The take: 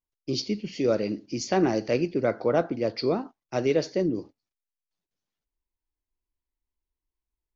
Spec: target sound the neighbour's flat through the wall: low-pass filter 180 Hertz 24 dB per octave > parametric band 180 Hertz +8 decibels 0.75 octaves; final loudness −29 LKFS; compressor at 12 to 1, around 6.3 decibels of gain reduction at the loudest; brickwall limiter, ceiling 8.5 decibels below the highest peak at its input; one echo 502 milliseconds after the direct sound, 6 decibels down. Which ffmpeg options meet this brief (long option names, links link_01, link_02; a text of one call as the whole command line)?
ffmpeg -i in.wav -af "acompressor=threshold=-24dB:ratio=12,alimiter=limit=-21.5dB:level=0:latency=1,lowpass=frequency=180:width=0.5412,lowpass=frequency=180:width=1.3066,equalizer=frequency=180:width_type=o:width=0.75:gain=8,aecho=1:1:502:0.501,volume=9.5dB" out.wav